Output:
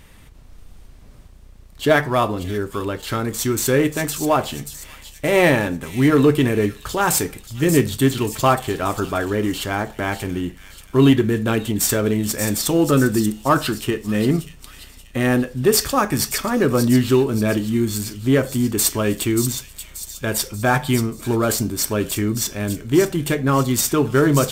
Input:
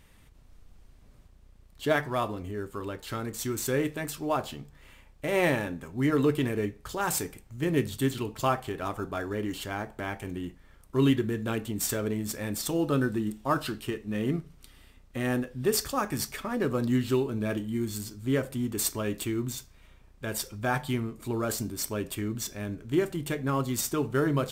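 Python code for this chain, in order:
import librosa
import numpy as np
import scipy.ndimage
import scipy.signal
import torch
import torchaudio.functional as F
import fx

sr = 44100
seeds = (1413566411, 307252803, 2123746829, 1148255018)

p1 = np.clip(10.0 ** (23.0 / 20.0) * x, -1.0, 1.0) / 10.0 ** (23.0 / 20.0)
p2 = x + (p1 * 10.0 ** (-8.0 / 20.0))
p3 = fx.echo_wet_highpass(p2, sr, ms=583, feedback_pct=46, hz=3700.0, wet_db=-7.0)
y = p3 * 10.0 ** (8.0 / 20.0)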